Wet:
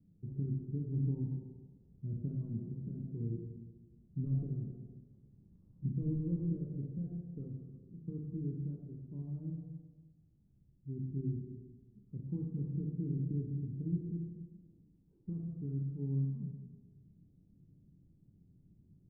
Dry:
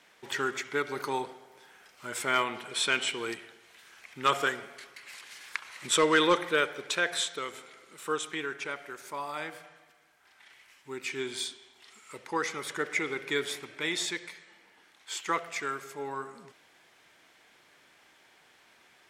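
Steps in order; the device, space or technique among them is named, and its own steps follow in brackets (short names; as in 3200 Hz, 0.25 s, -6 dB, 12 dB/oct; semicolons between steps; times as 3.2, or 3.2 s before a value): club heard from the street (limiter -25 dBFS, peak gain reduction 11 dB; LPF 160 Hz 24 dB/oct; reverb RT60 1.4 s, pre-delay 7 ms, DRR -1 dB); gain +17.5 dB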